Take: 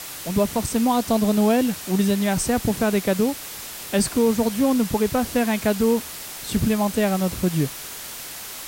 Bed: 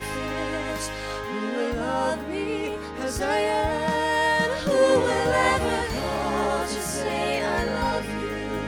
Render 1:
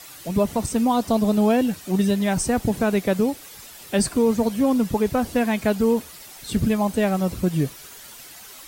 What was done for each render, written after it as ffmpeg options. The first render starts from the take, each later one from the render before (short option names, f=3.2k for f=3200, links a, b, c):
-af "afftdn=nr=10:nf=-36"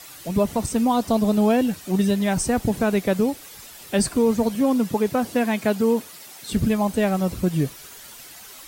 -filter_complex "[0:a]asettb=1/sr,asplit=3[a][b][c];[a]atrim=end=4.554[d];[b]atrim=start=4.55:end=6.53,asetpts=PTS-STARTPTS,afade=t=in:d=0.004:c=qsin,afade=t=out:st=1.976:d=0.004:c=qsin,highpass=140[e];[c]atrim=start=6.526[f];[d][e]acrossfade=d=0.004:c1=hsin:c2=qsin[g];[g][f]acrossfade=d=0.004:c1=qsin:c2=hsin"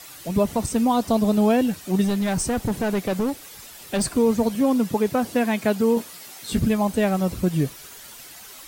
-filter_complex "[0:a]asettb=1/sr,asplit=3[a][b][c];[a]atrim=end=2.044[d];[b]atrim=start=2.04:end=4.05,asetpts=PTS-STARTPTS,afade=t=in:d=0.004:c=qsin,afade=t=out:st=2.006:d=0.004:c=qsin,asoftclip=type=hard:threshold=-19dB[e];[c]atrim=start=4.046[f];[d][e]acrossfade=d=0.004:c1=hsin:c2=qsin[g];[g][f]acrossfade=d=0.004:c1=qsin:c2=hsin,asettb=1/sr,asplit=3[h][i][j];[h]atrim=end=5.954[k];[i]atrim=start=5.95:end=6.59,asetpts=PTS-STARTPTS,afade=t=in:d=0.004:c=qsin,afade=t=out:st=0.636:d=0.004:c=qsin,asplit=2[l][m];[m]adelay=17,volume=-5dB[n];[l][n]amix=inputs=2:normalize=0,atrim=end_sample=28224[o];[j]atrim=start=6.586[p];[k][o]acrossfade=d=0.004:c1=hsin:c2=qsin[q];[q][p]acrossfade=d=0.004:c1=qsin:c2=hsin"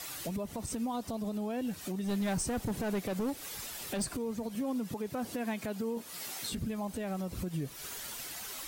-af "acompressor=threshold=-29dB:ratio=10,alimiter=level_in=3.5dB:limit=-24dB:level=0:latency=1:release=103,volume=-3.5dB"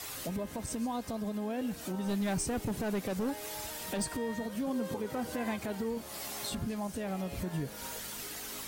-filter_complex "[1:a]volume=-22.5dB[a];[0:a][a]amix=inputs=2:normalize=0"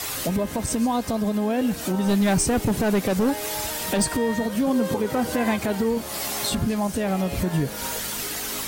-af "volume=12dB"